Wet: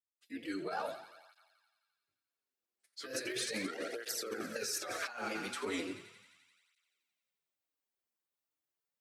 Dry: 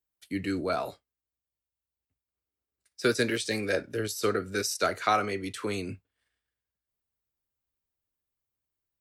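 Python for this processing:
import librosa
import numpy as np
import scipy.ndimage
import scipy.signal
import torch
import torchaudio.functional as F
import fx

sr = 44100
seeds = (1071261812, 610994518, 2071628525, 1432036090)

y = fx.fade_in_head(x, sr, length_s=1.0)
y = fx.room_shoebox(y, sr, seeds[0], volume_m3=580.0, walls='furnished', distance_m=0.55)
y = fx.granulator(y, sr, seeds[1], grain_ms=171.0, per_s=16.0, spray_ms=21.0, spread_st=3)
y = scipy.signal.sosfilt(scipy.signal.butter(2, 270.0, 'highpass', fs=sr, output='sos'), y)
y = fx.hum_notches(y, sr, base_hz=60, count=7)
y = fx.echo_thinned(y, sr, ms=87, feedback_pct=76, hz=580.0, wet_db=-13.0)
y = fx.over_compress(y, sr, threshold_db=-36.0, ratio=-1.0)
y = fx.flanger_cancel(y, sr, hz=0.37, depth_ms=7.4)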